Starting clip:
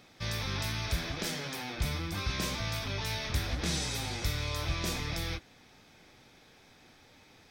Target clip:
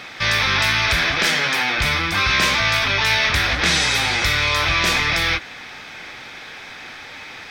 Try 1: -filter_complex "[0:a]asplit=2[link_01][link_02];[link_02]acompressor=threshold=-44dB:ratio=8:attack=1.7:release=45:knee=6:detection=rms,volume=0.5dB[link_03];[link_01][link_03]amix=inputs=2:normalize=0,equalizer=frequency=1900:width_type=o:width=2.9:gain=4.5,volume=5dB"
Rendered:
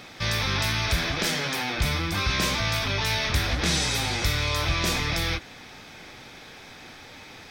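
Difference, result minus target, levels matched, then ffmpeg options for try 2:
2,000 Hz band −3.0 dB
-filter_complex "[0:a]asplit=2[link_01][link_02];[link_02]acompressor=threshold=-44dB:ratio=8:attack=1.7:release=45:knee=6:detection=rms,volume=0.5dB[link_03];[link_01][link_03]amix=inputs=2:normalize=0,equalizer=frequency=1900:width_type=o:width=2.9:gain=16,volume=5dB"

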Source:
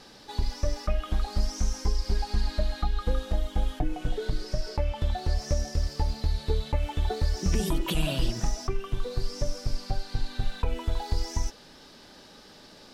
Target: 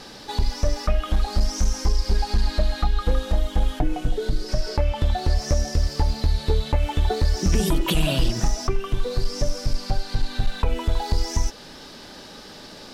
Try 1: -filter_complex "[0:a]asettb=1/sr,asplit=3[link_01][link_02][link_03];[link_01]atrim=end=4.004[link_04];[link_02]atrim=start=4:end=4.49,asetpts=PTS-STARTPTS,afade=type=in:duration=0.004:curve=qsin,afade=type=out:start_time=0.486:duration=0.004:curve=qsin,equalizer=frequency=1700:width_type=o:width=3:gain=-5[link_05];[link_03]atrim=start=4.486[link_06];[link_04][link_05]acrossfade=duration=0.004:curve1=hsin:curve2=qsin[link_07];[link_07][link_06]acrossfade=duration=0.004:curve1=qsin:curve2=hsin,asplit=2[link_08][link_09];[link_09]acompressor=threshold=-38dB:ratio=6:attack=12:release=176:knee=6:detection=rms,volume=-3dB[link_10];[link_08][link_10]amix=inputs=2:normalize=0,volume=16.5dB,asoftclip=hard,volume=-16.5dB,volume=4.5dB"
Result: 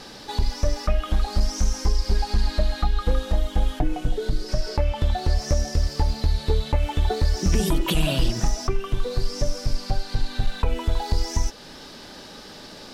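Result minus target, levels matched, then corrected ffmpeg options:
downward compressor: peak gain reduction +5 dB
-filter_complex "[0:a]asettb=1/sr,asplit=3[link_01][link_02][link_03];[link_01]atrim=end=4.004[link_04];[link_02]atrim=start=4:end=4.49,asetpts=PTS-STARTPTS,afade=type=in:duration=0.004:curve=qsin,afade=type=out:start_time=0.486:duration=0.004:curve=qsin,equalizer=frequency=1700:width_type=o:width=3:gain=-5[link_05];[link_03]atrim=start=4.486[link_06];[link_04][link_05]acrossfade=duration=0.004:curve1=hsin:curve2=qsin[link_07];[link_07][link_06]acrossfade=duration=0.004:curve1=qsin:curve2=hsin,asplit=2[link_08][link_09];[link_09]acompressor=threshold=-32dB:ratio=6:attack=12:release=176:knee=6:detection=rms,volume=-3dB[link_10];[link_08][link_10]amix=inputs=2:normalize=0,volume=16.5dB,asoftclip=hard,volume=-16.5dB,volume=4.5dB"

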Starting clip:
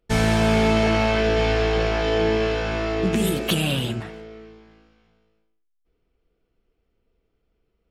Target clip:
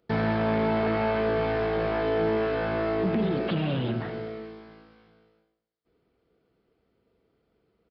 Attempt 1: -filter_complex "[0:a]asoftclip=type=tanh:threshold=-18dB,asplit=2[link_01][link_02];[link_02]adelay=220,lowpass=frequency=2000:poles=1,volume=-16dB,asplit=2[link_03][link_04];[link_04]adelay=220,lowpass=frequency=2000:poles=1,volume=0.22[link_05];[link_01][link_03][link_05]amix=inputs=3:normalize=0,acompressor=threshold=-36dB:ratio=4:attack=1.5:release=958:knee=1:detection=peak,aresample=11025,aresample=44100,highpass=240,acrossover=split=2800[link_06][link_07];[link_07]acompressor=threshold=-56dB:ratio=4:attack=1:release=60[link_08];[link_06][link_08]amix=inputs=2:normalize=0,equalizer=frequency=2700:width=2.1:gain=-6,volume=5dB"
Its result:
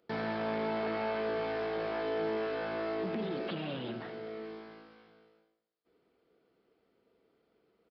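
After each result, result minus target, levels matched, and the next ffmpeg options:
downward compressor: peak gain reduction +7.5 dB; 125 Hz band −7.0 dB
-filter_complex "[0:a]asoftclip=type=tanh:threshold=-18dB,asplit=2[link_01][link_02];[link_02]adelay=220,lowpass=frequency=2000:poles=1,volume=-16dB,asplit=2[link_03][link_04];[link_04]adelay=220,lowpass=frequency=2000:poles=1,volume=0.22[link_05];[link_01][link_03][link_05]amix=inputs=3:normalize=0,acompressor=threshold=-26dB:ratio=4:attack=1.5:release=958:knee=1:detection=peak,aresample=11025,aresample=44100,highpass=240,acrossover=split=2800[link_06][link_07];[link_07]acompressor=threshold=-56dB:ratio=4:attack=1:release=60[link_08];[link_06][link_08]amix=inputs=2:normalize=0,equalizer=frequency=2700:width=2.1:gain=-6,volume=5dB"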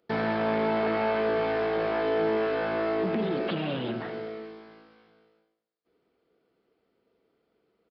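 125 Hz band −7.0 dB
-filter_complex "[0:a]asoftclip=type=tanh:threshold=-18dB,asplit=2[link_01][link_02];[link_02]adelay=220,lowpass=frequency=2000:poles=1,volume=-16dB,asplit=2[link_03][link_04];[link_04]adelay=220,lowpass=frequency=2000:poles=1,volume=0.22[link_05];[link_01][link_03][link_05]amix=inputs=3:normalize=0,acompressor=threshold=-26dB:ratio=4:attack=1.5:release=958:knee=1:detection=peak,aresample=11025,aresample=44100,highpass=110,acrossover=split=2800[link_06][link_07];[link_07]acompressor=threshold=-56dB:ratio=4:attack=1:release=60[link_08];[link_06][link_08]amix=inputs=2:normalize=0,equalizer=frequency=2700:width=2.1:gain=-6,volume=5dB"

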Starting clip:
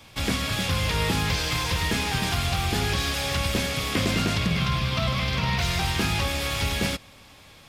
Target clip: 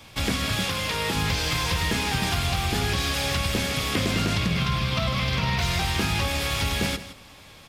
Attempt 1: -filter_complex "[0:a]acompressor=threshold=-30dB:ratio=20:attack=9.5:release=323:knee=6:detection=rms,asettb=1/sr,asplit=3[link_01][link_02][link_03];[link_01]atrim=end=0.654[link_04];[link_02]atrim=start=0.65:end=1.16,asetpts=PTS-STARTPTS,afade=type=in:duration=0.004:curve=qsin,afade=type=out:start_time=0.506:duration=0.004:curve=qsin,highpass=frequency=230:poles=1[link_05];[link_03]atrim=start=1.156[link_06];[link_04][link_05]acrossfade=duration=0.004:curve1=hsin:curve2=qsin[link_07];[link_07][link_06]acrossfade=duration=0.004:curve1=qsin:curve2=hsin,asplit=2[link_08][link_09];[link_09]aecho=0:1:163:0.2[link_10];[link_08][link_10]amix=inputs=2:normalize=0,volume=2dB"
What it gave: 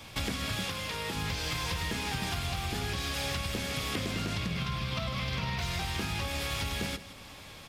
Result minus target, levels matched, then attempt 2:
downward compressor: peak gain reduction +9.5 dB
-filter_complex "[0:a]acompressor=threshold=-19dB:ratio=20:attack=9.5:release=323:knee=6:detection=rms,asettb=1/sr,asplit=3[link_01][link_02][link_03];[link_01]atrim=end=0.654[link_04];[link_02]atrim=start=0.65:end=1.16,asetpts=PTS-STARTPTS,afade=type=in:duration=0.004:curve=qsin,afade=type=out:start_time=0.506:duration=0.004:curve=qsin,highpass=frequency=230:poles=1[link_05];[link_03]atrim=start=1.156[link_06];[link_04][link_05]acrossfade=duration=0.004:curve1=hsin:curve2=qsin[link_07];[link_07][link_06]acrossfade=duration=0.004:curve1=qsin:curve2=hsin,asplit=2[link_08][link_09];[link_09]aecho=0:1:163:0.2[link_10];[link_08][link_10]amix=inputs=2:normalize=0,volume=2dB"

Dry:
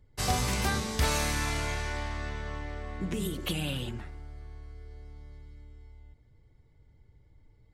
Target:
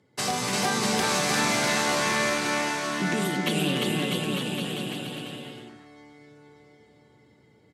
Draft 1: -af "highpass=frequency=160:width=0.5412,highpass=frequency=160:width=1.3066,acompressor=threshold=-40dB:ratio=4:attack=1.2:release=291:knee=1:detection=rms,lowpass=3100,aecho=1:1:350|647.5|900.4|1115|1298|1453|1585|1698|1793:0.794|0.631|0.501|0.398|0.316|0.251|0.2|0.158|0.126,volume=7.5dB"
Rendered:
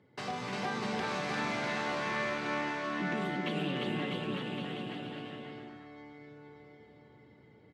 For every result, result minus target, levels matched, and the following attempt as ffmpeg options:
8,000 Hz band −13.5 dB; downward compressor: peak gain reduction +8.5 dB
-af "highpass=frequency=160:width=0.5412,highpass=frequency=160:width=1.3066,acompressor=threshold=-40dB:ratio=4:attack=1.2:release=291:knee=1:detection=rms,lowpass=11000,aecho=1:1:350|647.5|900.4|1115|1298|1453|1585|1698|1793:0.794|0.631|0.501|0.398|0.316|0.251|0.2|0.158|0.126,volume=7.5dB"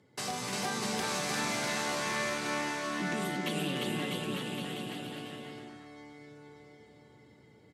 downward compressor: peak gain reduction +8.5 dB
-af "highpass=frequency=160:width=0.5412,highpass=frequency=160:width=1.3066,acompressor=threshold=-28.5dB:ratio=4:attack=1.2:release=291:knee=1:detection=rms,lowpass=11000,aecho=1:1:350|647.5|900.4|1115|1298|1453|1585|1698|1793:0.794|0.631|0.501|0.398|0.316|0.251|0.2|0.158|0.126,volume=7.5dB"

